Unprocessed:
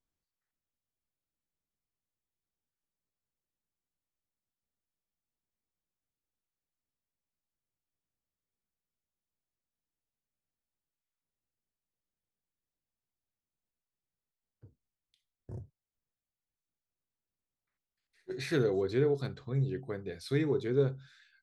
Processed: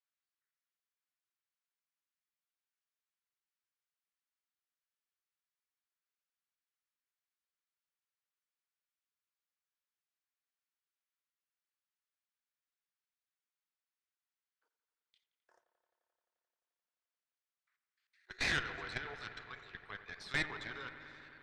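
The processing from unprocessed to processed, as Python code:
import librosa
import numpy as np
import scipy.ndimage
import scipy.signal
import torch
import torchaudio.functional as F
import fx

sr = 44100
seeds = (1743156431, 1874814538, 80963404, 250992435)

p1 = fx.ladder_highpass(x, sr, hz=1000.0, resonance_pct=25)
p2 = fx.level_steps(p1, sr, step_db=12)
p3 = fx.dynamic_eq(p2, sr, hz=1700.0, q=0.7, threshold_db=-60.0, ratio=4.0, max_db=3)
p4 = fx.cheby_harmonics(p3, sr, harmonics=(6,), levels_db=(-12,), full_scale_db=-33.5)
p5 = fx.air_absorb(p4, sr, metres=89.0)
p6 = p5 + fx.echo_wet_lowpass(p5, sr, ms=87, feedback_pct=85, hz=2400.0, wet_db=-13.0, dry=0)
y = p6 * librosa.db_to_amplitude(12.5)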